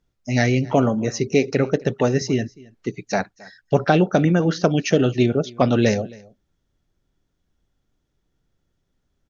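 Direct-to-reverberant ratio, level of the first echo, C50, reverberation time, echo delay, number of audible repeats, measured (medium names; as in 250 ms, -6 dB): no reverb, -23.5 dB, no reverb, no reverb, 269 ms, 1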